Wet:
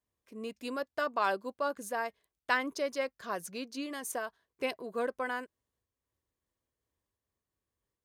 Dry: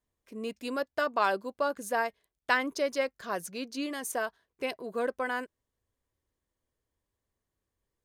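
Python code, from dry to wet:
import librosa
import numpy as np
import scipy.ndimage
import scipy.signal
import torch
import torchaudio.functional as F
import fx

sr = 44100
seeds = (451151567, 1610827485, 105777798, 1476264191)

y = scipy.signal.sosfilt(scipy.signal.butter(2, 46.0, 'highpass', fs=sr, output='sos'), x)
y = fx.peak_eq(y, sr, hz=1100.0, db=2.5, octaves=0.23)
y = fx.am_noise(y, sr, seeds[0], hz=5.7, depth_pct=60)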